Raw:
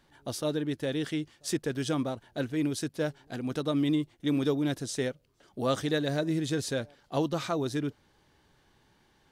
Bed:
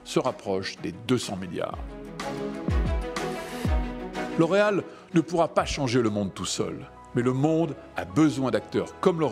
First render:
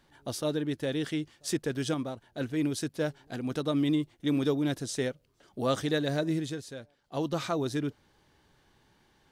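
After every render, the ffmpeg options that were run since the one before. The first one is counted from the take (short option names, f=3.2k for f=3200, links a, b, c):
-filter_complex "[0:a]asplit=5[a][b][c][d][e];[a]atrim=end=1.942[f];[b]atrim=start=1.938:end=2.412,asetpts=PTS-STARTPTS,volume=-3.5dB[g];[c]atrim=start=2.408:end=6.62,asetpts=PTS-STARTPTS,afade=t=out:st=3.922:d=0.29:silence=0.281838[h];[d]atrim=start=6.62:end=7.04,asetpts=PTS-STARTPTS,volume=-11dB[i];[e]atrim=start=7.04,asetpts=PTS-STARTPTS,afade=t=in:d=0.29:silence=0.281838[j];[f][g]acrossfade=d=0.004:c1=hsin:c2=hsin[k];[h][i][j]concat=n=3:v=0:a=1[l];[k][l]acrossfade=d=0.004:c1=hsin:c2=hsin"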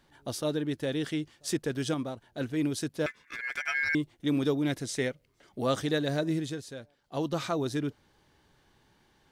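-filter_complex "[0:a]asettb=1/sr,asplit=3[a][b][c];[a]atrim=end=3.064[d];[b]atrim=start=3.06:end=3.95,asetpts=PTS-STARTPTS,afade=t=in:d=0.004:c=qsin,afade=t=out:st=0.886:d=0.004:c=qsin,aeval=exprs='val(0)*sin(2*PI*1900*n/s)':c=same[e];[c]atrim=start=3.946[f];[d][e]acrossfade=d=0.004:c1=hsin:c2=qsin[g];[g][f]acrossfade=d=0.004:c1=qsin:c2=hsin,asettb=1/sr,asplit=3[h][i][j];[h]atrim=end=4.644[k];[i]atrim=start=4.64:end=5.64,asetpts=PTS-STARTPTS,afade=t=in:d=0.004:c=qsin,afade=t=out:st=0.996:d=0.004:c=qsin,equalizer=f=2.1k:t=o:w=0.32:g=8.5[l];[j]atrim=start=5.636[m];[k][l]acrossfade=d=0.004:c1=hsin:c2=qsin[n];[n][m]acrossfade=d=0.004:c1=qsin:c2=hsin"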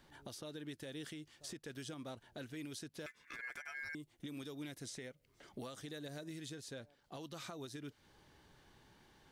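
-filter_complex "[0:a]acrossover=split=1500|6700[a][b][c];[a]acompressor=threshold=-42dB:ratio=4[d];[b]acompressor=threshold=-47dB:ratio=4[e];[c]acompressor=threshold=-52dB:ratio=4[f];[d][e][f]amix=inputs=3:normalize=0,alimiter=level_in=13dB:limit=-24dB:level=0:latency=1:release=286,volume=-13dB"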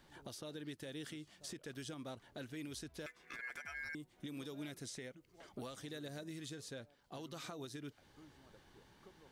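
-filter_complex "[1:a]volume=-40.5dB[a];[0:a][a]amix=inputs=2:normalize=0"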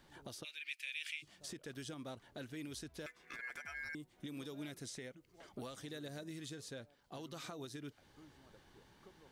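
-filter_complex "[0:a]asplit=3[a][b][c];[a]afade=t=out:st=0.43:d=0.02[d];[b]highpass=f=2.4k:t=q:w=14,afade=t=in:st=0.43:d=0.02,afade=t=out:st=1.22:d=0.02[e];[c]afade=t=in:st=1.22:d=0.02[f];[d][e][f]amix=inputs=3:normalize=0"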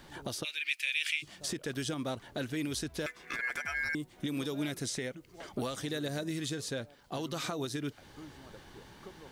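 -af "volume=11.5dB"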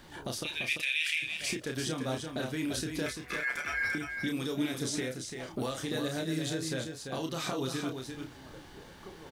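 -filter_complex "[0:a]asplit=2[a][b];[b]adelay=31,volume=-5dB[c];[a][c]amix=inputs=2:normalize=0,aecho=1:1:342:0.501"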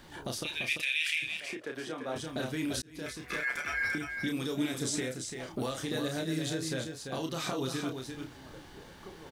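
-filter_complex "[0:a]asettb=1/sr,asplit=3[a][b][c];[a]atrim=end=1.404[d];[b]atrim=start=1.4:end=2.16,asetpts=PTS-STARTPTS,afade=t=in:d=0.004:c=qsin,afade=t=out:st=0.756:d=0.004:c=qsin,acrossover=split=300 2600:gain=0.158 1 0.224[e][f][g];[e][f][g]amix=inputs=3:normalize=0[h];[c]atrim=start=2.156[i];[d][h]acrossfade=d=0.004:c1=hsin:c2=qsin[j];[j][i]acrossfade=d=0.004:c1=qsin:c2=hsin,asettb=1/sr,asplit=3[k][l][m];[k]atrim=end=4.524[n];[l]atrim=start=4.52:end=5.34,asetpts=PTS-STARTPTS,afade=t=in:d=0.004:c=qsin,afade=t=out:st=0.816:d=0.004:c=qsin,equalizer=f=7.7k:t=o:w=0.22:g=7[o];[m]atrim=start=5.336[p];[n][o]acrossfade=d=0.004:c1=hsin:c2=qsin[q];[q][p]acrossfade=d=0.004:c1=qsin:c2=hsin,asplit=2[r][s];[r]atrim=end=2.82,asetpts=PTS-STARTPTS,afade=t=out:st=2.816:d=0.004:c=hsin[t];[s]atrim=start=2.82,asetpts=PTS-STARTPTS,afade=t=in:d=0.43[u];[t][u]concat=n=2:v=0:a=1"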